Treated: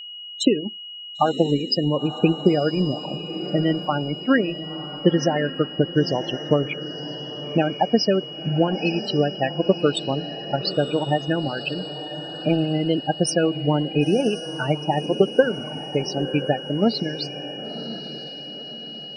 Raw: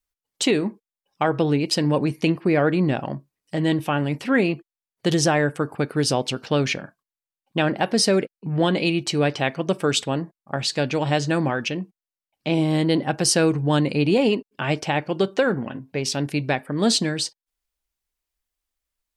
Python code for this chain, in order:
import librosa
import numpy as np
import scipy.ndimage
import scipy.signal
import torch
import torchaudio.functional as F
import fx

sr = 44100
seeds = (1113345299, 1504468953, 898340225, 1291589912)

p1 = fx.transient(x, sr, attack_db=9, sustain_db=-11)
p2 = fx.spec_topn(p1, sr, count=16)
p3 = p2 + fx.echo_diffused(p2, sr, ms=1010, feedback_pct=44, wet_db=-12, dry=0)
p4 = p3 + 10.0 ** (-32.0 / 20.0) * np.sin(2.0 * np.pi * 2900.0 * np.arange(len(p3)) / sr)
y = F.gain(torch.from_numpy(p4), -2.5).numpy()